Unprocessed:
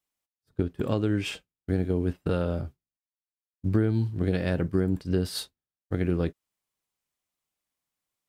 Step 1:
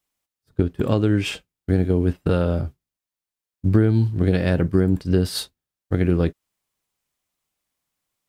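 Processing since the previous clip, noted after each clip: bass shelf 130 Hz +3 dB; trim +6 dB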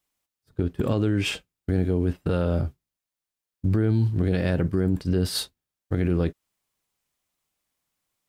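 peak limiter -14.5 dBFS, peak gain reduction 8 dB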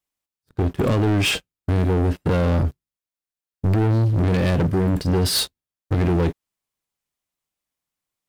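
waveshaping leveller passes 3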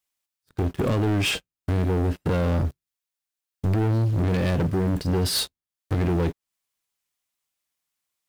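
in parallel at -10 dB: word length cut 6-bit, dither none; on the sum: tape noise reduction on one side only encoder only; trim -6 dB

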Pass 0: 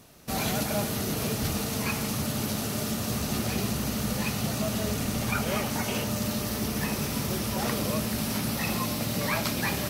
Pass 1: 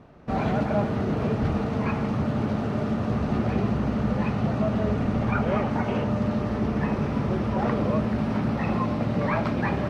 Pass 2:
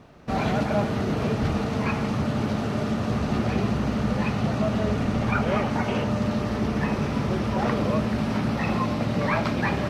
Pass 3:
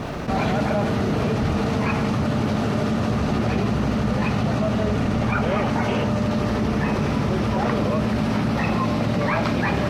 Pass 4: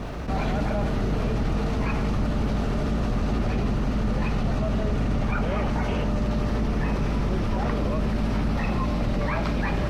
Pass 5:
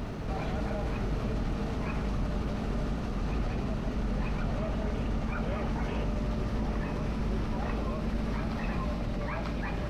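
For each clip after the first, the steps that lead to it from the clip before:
low-pass 1.4 kHz 12 dB/octave; trim +5.5 dB
treble shelf 2.8 kHz +11.5 dB
level flattener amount 70%
octave divider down 2 oct, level +3 dB; trim -6 dB
reverse echo 940 ms -5.5 dB; trim -8 dB

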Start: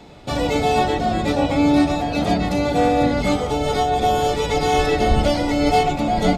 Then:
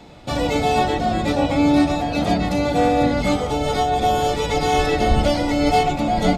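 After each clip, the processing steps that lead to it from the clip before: band-stop 410 Hz, Q 12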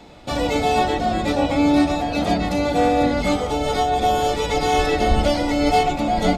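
peaking EQ 130 Hz -5.5 dB 0.86 oct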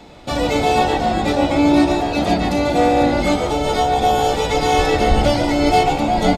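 frequency-shifting echo 144 ms, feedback 31%, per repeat +62 Hz, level -10 dB; trim +2.5 dB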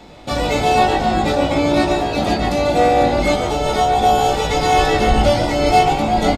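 doubling 19 ms -6 dB

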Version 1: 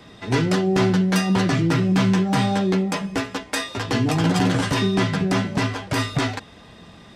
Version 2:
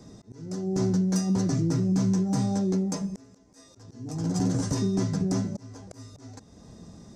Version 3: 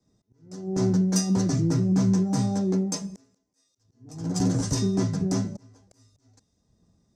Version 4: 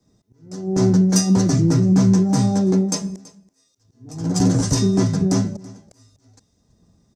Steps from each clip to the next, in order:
FFT filter 240 Hz 0 dB, 550 Hz -5 dB, 3.1 kHz -21 dB, 6.1 kHz +5 dB, 11 kHz -7 dB; compression 1.5:1, threshold -30 dBFS, peak gain reduction 5.5 dB; slow attack 523 ms
three bands expanded up and down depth 100%; trim +1.5 dB
delay 330 ms -21.5 dB; trim +7 dB

